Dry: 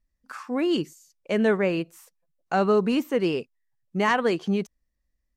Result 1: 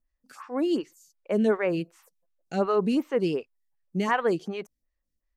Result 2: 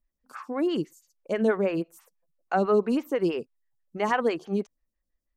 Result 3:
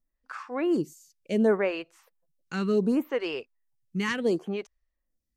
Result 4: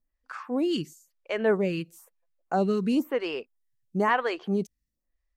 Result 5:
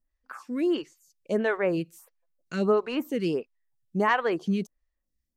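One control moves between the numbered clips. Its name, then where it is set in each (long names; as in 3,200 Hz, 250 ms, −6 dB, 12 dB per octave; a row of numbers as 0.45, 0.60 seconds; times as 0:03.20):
phaser with staggered stages, speed: 2.7, 6.1, 0.69, 1, 1.5 Hertz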